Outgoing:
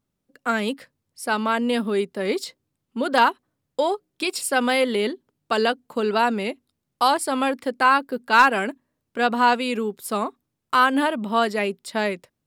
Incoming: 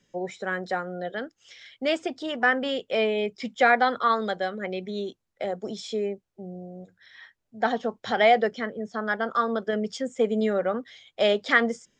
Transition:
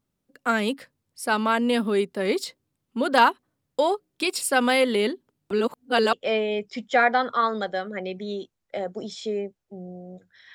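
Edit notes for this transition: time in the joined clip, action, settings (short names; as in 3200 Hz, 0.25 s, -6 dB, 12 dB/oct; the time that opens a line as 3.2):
outgoing
5.51–6.13 reverse
6.13 switch to incoming from 2.8 s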